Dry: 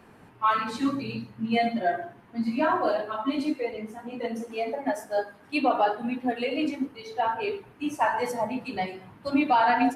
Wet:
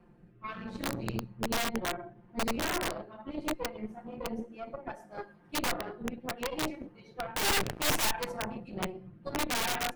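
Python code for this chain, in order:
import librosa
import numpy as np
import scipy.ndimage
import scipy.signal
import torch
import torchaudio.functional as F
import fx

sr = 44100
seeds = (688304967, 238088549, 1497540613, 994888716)

y = fx.tilt_eq(x, sr, slope=-3.0)
y = y + 0.87 * np.pad(y, (int(5.7 * sr / 1000.0), 0))[:len(y)]
y = fx.dynamic_eq(y, sr, hz=110.0, q=4.1, threshold_db=-46.0, ratio=4.0, max_db=5)
y = fx.leveller(y, sr, passes=5, at=(7.36, 8.11))
y = fx.rotary(y, sr, hz=0.7)
y = fx.cheby_harmonics(y, sr, harmonics=(3, 4, 6, 8), levels_db=(-18, -41, -8, -18), full_scale_db=-6.0)
y = (np.mod(10.0 ** (15.5 / 20.0) * y + 1.0, 2.0) - 1.0) / 10.0 ** (15.5 / 20.0)
y = F.gain(torch.from_numpy(y), -7.0).numpy()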